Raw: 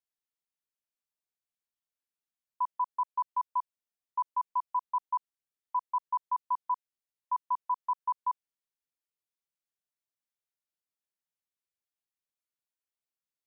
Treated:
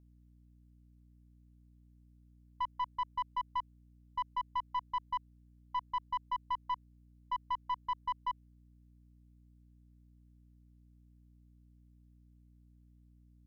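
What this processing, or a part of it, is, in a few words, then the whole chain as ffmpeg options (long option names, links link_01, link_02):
valve amplifier with mains hum: -af "aeval=exprs='(tanh(22.4*val(0)+0.25)-tanh(0.25))/22.4':channel_layout=same,aeval=exprs='val(0)+0.00112*(sin(2*PI*60*n/s)+sin(2*PI*2*60*n/s)/2+sin(2*PI*3*60*n/s)/3+sin(2*PI*4*60*n/s)/4+sin(2*PI*5*60*n/s)/5)':channel_layout=same,volume=-1.5dB"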